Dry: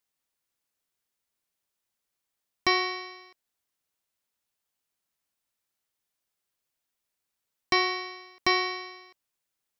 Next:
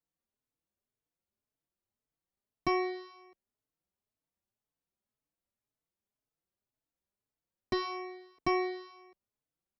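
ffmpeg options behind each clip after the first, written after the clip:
-filter_complex "[0:a]tiltshelf=f=910:g=9,asplit=2[a][b];[b]adelay=4.1,afreqshift=1.9[c];[a][c]amix=inputs=2:normalize=1,volume=-3.5dB"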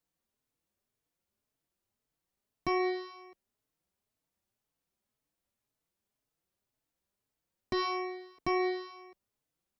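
-af "alimiter=level_in=3dB:limit=-24dB:level=0:latency=1:release=61,volume=-3dB,volume=5dB"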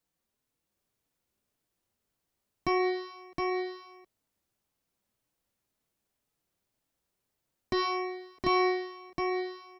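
-af "aecho=1:1:716:0.668,volume=2.5dB"

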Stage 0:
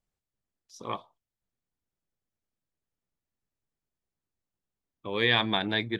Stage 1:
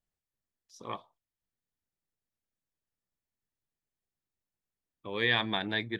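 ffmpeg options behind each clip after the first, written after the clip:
-af "equalizer=f=1.8k:t=o:w=0.26:g=4,volume=-4.5dB"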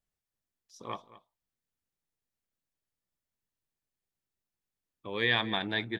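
-af "aecho=1:1:223:0.133"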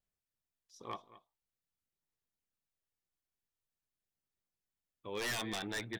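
-af "aphaser=in_gain=1:out_gain=1:delay=2.8:decay=0.23:speed=0.46:type=sinusoidal,aeval=exprs='0.0501*(abs(mod(val(0)/0.0501+3,4)-2)-1)':c=same,volume=-5dB"

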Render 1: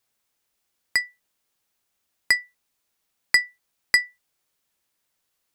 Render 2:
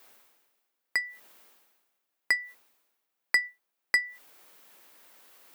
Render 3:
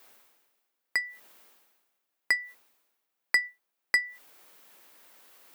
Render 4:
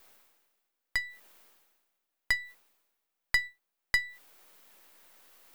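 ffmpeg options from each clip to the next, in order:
-af "highpass=280,equalizer=f=6.9k:t=o:w=2.4:g=-8.5,areverse,acompressor=mode=upward:threshold=-33dB:ratio=2.5,areverse,volume=-2.5dB"
-af anull
-af "aeval=exprs='if(lt(val(0),0),0.447*val(0),val(0))':c=same"

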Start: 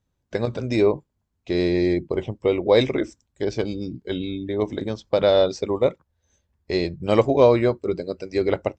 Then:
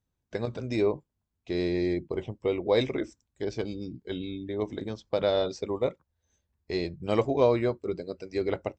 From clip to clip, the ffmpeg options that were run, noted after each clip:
-af "bandreject=f=560:w=18,volume=-7dB"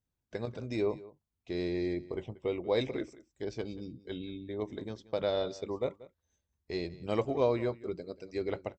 -af "aecho=1:1:184:0.112,volume=-5.5dB"

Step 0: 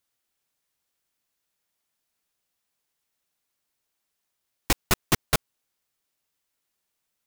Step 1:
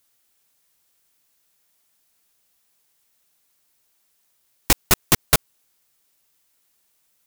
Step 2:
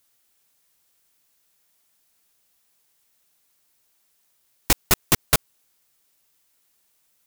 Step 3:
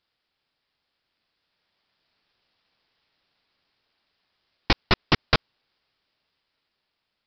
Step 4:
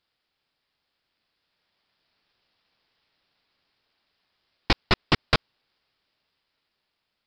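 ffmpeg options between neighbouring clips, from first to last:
-af "highshelf=f=6.3k:g=6.5,alimiter=level_in=9.5dB:limit=-1dB:release=50:level=0:latency=1,volume=-1dB"
-af "asoftclip=type=tanh:threshold=-7dB"
-af "dynaudnorm=f=500:g=7:m=7dB,aresample=11025,acrusher=bits=2:mode=log:mix=0:aa=0.000001,aresample=44100,volume=-4dB"
-af "asoftclip=type=tanh:threshold=-6dB"

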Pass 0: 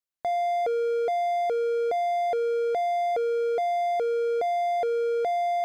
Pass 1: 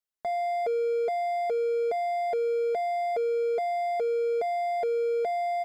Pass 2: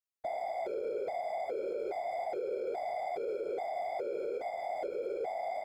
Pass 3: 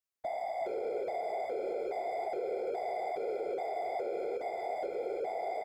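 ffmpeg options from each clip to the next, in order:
-af "aecho=1:1:4.7:0.72,volume=-4dB"
-af "afftfilt=real='hypot(re,im)*cos(2*PI*random(0))':imag='hypot(re,im)*sin(2*PI*random(1))':win_size=512:overlap=0.75,alimiter=level_in=3.5dB:limit=-24dB:level=0:latency=1:release=52,volume=-3.5dB,volume=-1dB"
-af "aecho=1:1:368:0.355"

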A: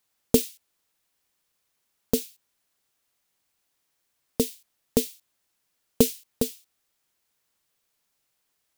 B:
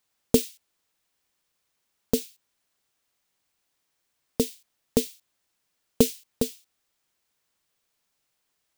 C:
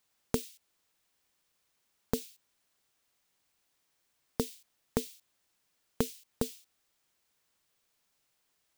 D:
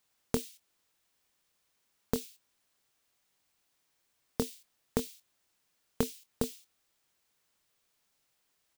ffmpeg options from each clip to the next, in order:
-af "equalizer=f=13k:t=o:w=0.72:g=-4.5"
-af "acompressor=threshold=-28dB:ratio=5"
-filter_complex "[0:a]asplit=2[a][b];[b]adelay=24,volume=-12.5dB[c];[a][c]amix=inputs=2:normalize=0"

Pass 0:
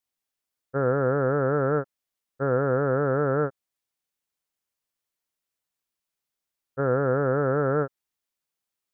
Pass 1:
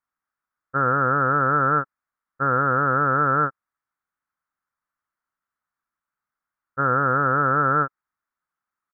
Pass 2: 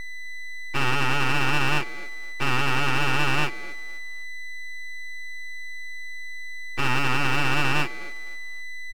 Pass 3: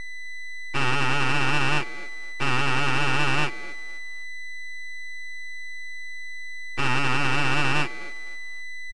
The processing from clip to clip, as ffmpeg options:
-af "firequalizer=gain_entry='entry(290,0);entry(420,-6);entry(1300,14);entry(2800,-13)':delay=0.05:min_phase=1"
-filter_complex "[0:a]aeval=exprs='val(0)+0.0355*sin(2*PI*1000*n/s)':c=same,asplit=2[a][b];[b]adelay=257,lowpass=f=1k:p=1,volume=-18.5dB,asplit=2[c][d];[d]adelay=257,lowpass=f=1k:p=1,volume=0.35,asplit=2[e][f];[f]adelay=257,lowpass=f=1k:p=1,volume=0.35[g];[a][c][e][g]amix=inputs=4:normalize=0,aeval=exprs='abs(val(0))':c=same"
-af "aresample=22050,aresample=44100"

